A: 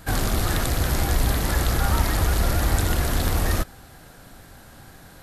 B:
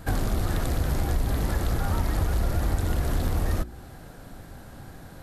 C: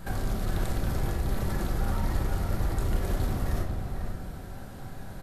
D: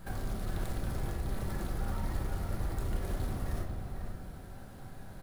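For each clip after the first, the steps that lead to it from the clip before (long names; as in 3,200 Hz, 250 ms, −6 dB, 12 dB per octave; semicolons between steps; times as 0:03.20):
tilt shelving filter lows +4.5 dB; hum removal 59.85 Hz, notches 7; downward compressor 2.5 to 1, threshold −24 dBFS, peak gain reduction 9.5 dB
brickwall limiter −22.5 dBFS, peak gain reduction 8.5 dB; slap from a distant wall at 85 metres, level −6 dB; rectangular room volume 430 cubic metres, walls mixed, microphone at 1.1 metres; level −2 dB
bad sample-rate conversion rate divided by 2×, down none, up hold; level −6.5 dB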